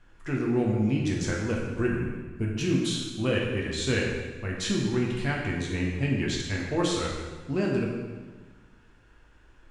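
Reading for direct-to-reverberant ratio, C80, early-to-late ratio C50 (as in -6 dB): -3.0 dB, 3.5 dB, 1.5 dB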